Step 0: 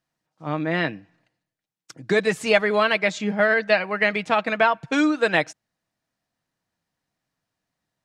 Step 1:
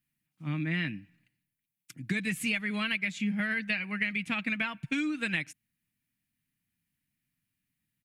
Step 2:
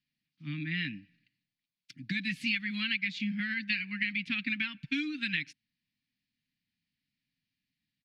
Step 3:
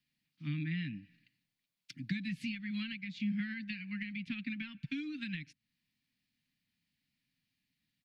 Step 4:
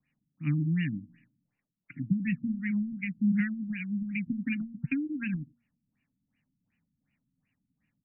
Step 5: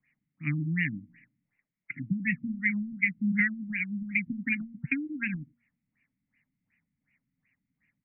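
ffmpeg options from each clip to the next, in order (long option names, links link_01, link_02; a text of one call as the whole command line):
ffmpeg -i in.wav -af "firequalizer=gain_entry='entry(250,0);entry(420,-20);entry(650,-22);entry(2300,2);entry(3900,-7);entry(5600,-9);entry(11000,7)':delay=0.05:min_phase=1,acompressor=threshold=-27dB:ratio=6" out.wav
ffmpeg -i in.wav -af "firequalizer=gain_entry='entry(110,0);entry(280,6);entry(440,-24);entry(1700,4);entry(4500,13);entry(7400,-10);entry(13000,-14)':delay=0.05:min_phase=1,volume=-6.5dB" out.wav
ffmpeg -i in.wav -filter_complex "[0:a]acrossover=split=220[link_01][link_02];[link_02]acompressor=threshold=-46dB:ratio=5[link_03];[link_01][link_03]amix=inputs=2:normalize=0,volume=2.5dB" out.wav
ffmpeg -i in.wav -af "bandreject=frequency=236.2:width_type=h:width=4,bandreject=frequency=472.4:width_type=h:width=4,bandreject=frequency=708.6:width_type=h:width=4,bandreject=frequency=944.8:width_type=h:width=4,bandreject=frequency=1181:width_type=h:width=4,bandreject=frequency=1417.2:width_type=h:width=4,afftfilt=real='re*lt(b*sr/1024,290*pow(3000/290,0.5+0.5*sin(2*PI*2.7*pts/sr)))':imag='im*lt(b*sr/1024,290*pow(3000/290,0.5+0.5*sin(2*PI*2.7*pts/sr)))':win_size=1024:overlap=0.75,volume=9dB" out.wav
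ffmpeg -i in.wav -af "lowpass=frequency=2100:width_type=q:width=6.7,volume=-2.5dB" out.wav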